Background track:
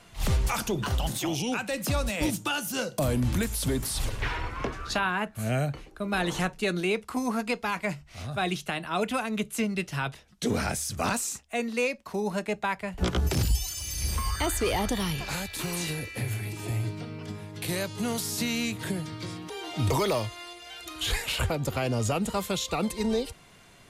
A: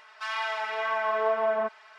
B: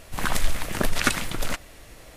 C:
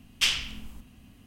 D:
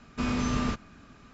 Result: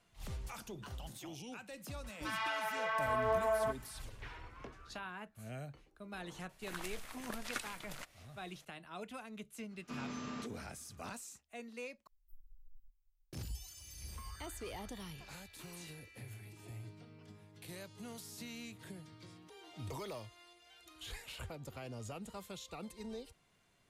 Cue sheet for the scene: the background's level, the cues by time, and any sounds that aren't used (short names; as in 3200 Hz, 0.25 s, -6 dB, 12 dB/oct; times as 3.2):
background track -18.5 dB
2.04 add A -7 dB
6.49 add B -17.5 dB + low shelf 330 Hz -10.5 dB
9.71 add D -13.5 dB + HPF 170 Hz
12.07 replace with C -9.5 dB + inverse Chebyshev band-stop 170–6000 Hz, stop band 80 dB